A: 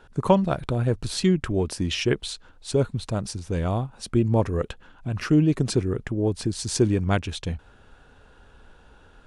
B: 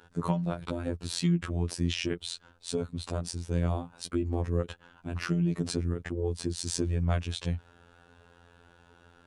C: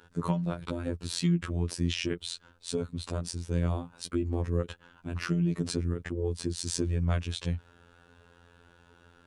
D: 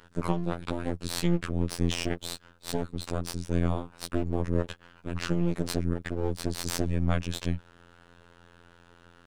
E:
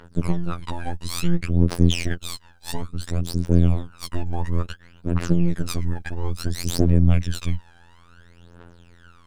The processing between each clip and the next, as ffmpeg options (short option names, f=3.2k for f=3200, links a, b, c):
-filter_complex "[0:a]acrossover=split=190[a][b];[b]acompressor=threshold=-27dB:ratio=4[c];[a][c]amix=inputs=2:normalize=0,highpass=58,afftfilt=real='hypot(re,im)*cos(PI*b)':imag='0':win_size=2048:overlap=0.75"
-af "equalizer=f=730:t=o:w=0.45:g=-4.5"
-af "aeval=exprs='max(val(0),0)':c=same,volume=3.5dB"
-af "aphaser=in_gain=1:out_gain=1:delay=1.3:decay=0.76:speed=0.58:type=triangular"